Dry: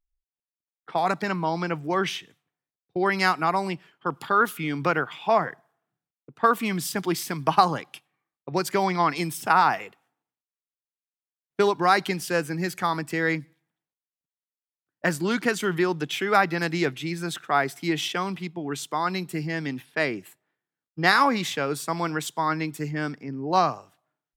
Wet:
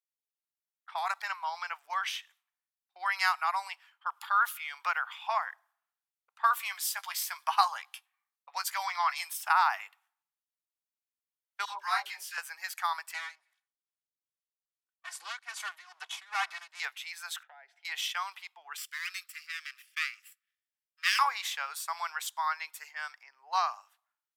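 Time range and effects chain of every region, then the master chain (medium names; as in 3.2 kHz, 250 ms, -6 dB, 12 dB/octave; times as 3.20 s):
6.50–9.25 s: tone controls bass -7 dB, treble +2 dB + band-stop 400 Hz, Q 7.9 + doubling 15 ms -10.5 dB
11.65–12.38 s: phase dispersion lows, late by 132 ms, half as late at 550 Hz + detune thickener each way 20 cents
13.14–16.80 s: comb filter that takes the minimum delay 2.7 ms + low-pass 11 kHz 24 dB/octave + tremolo 2.4 Hz, depth 89%
17.43–17.85 s: low-pass 1.5 kHz + compression 12:1, threshold -31 dBFS + static phaser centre 470 Hz, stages 4
18.77–21.19 s: comb filter that takes the minimum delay 0.38 ms + Chebyshev high-pass 1.2 kHz, order 6
whole clip: steep high-pass 850 Hz 36 dB/octave; peaking EQ 13 kHz +4.5 dB 0.49 oct; trim -4.5 dB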